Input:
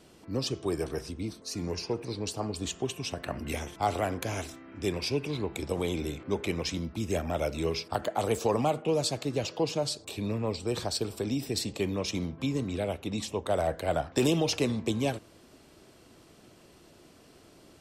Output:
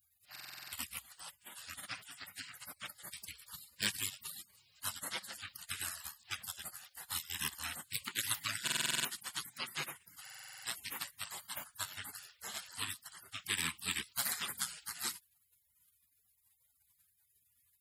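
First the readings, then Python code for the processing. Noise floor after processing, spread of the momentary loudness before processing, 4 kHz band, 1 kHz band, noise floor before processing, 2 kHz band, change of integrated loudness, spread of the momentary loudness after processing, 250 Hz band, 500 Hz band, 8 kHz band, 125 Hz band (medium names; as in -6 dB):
-76 dBFS, 7 LU, -3.5 dB, -13.5 dB, -57 dBFS, -1.0 dB, -8.5 dB, 14 LU, -24.5 dB, -29.5 dB, 0.0 dB, -22.0 dB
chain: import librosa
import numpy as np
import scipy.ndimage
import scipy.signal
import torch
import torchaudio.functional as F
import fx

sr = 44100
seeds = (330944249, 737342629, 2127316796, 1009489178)

p1 = scipy.signal.sosfilt(scipy.signal.butter(2, 530.0, 'highpass', fs=sr, output='sos'), x)
p2 = fx.spec_gate(p1, sr, threshold_db=-30, keep='weak')
p3 = fx.peak_eq(p2, sr, hz=6000.0, db=-11.0, octaves=0.23)
p4 = 10.0 ** (-38.0 / 20.0) * np.tanh(p3 / 10.0 ** (-38.0 / 20.0))
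p5 = p3 + (p4 * librosa.db_to_amplitude(-10.0))
p6 = fx.buffer_glitch(p5, sr, at_s=(0.31, 8.63, 10.23), block=2048, repeats=8)
y = p6 * librosa.db_to_amplitude(12.5)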